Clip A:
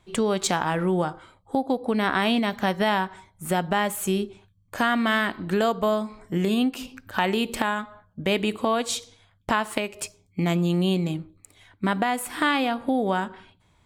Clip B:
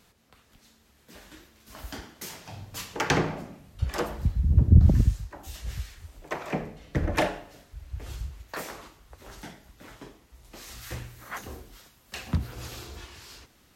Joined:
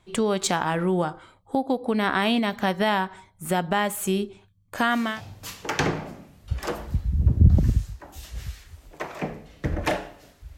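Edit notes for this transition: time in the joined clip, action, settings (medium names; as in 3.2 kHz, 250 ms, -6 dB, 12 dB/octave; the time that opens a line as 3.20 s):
clip A
5.05 s: go over to clip B from 2.36 s, crossfade 0.32 s equal-power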